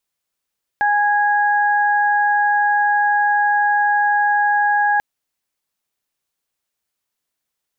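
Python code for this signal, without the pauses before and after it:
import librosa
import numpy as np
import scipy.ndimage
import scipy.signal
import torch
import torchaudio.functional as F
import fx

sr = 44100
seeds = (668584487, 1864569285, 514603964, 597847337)

y = fx.additive_steady(sr, length_s=4.19, hz=826.0, level_db=-15.0, upper_db=(-2.5,))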